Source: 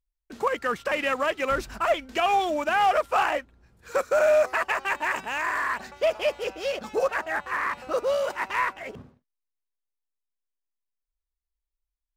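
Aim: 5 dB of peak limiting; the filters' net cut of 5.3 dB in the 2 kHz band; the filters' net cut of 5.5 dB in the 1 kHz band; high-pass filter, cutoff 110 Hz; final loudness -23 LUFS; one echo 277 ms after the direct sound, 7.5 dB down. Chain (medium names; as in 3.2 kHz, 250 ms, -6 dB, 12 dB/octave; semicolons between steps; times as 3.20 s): high-pass 110 Hz; peaking EQ 1 kHz -6.5 dB; peaking EQ 2 kHz -4.5 dB; peak limiter -20.5 dBFS; delay 277 ms -7.5 dB; trim +7.5 dB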